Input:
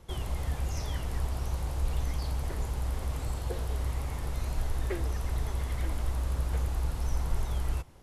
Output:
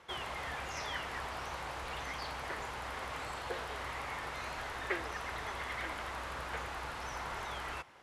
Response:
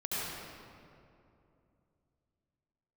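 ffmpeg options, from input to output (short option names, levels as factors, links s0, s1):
-af "bandpass=f=1700:t=q:w=1:csg=0,volume=2.66"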